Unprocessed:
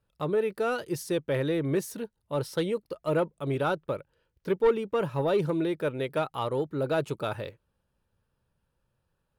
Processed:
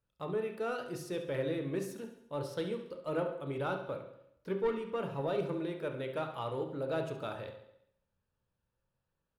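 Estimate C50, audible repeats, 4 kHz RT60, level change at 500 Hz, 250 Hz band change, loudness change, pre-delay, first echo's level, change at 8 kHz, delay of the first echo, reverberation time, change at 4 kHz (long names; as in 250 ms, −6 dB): 7.0 dB, 5, 0.75 s, −7.5 dB, −8.0 dB, −7.5 dB, 16 ms, −12.0 dB, can't be measured, 69 ms, 0.75 s, −7.5 dB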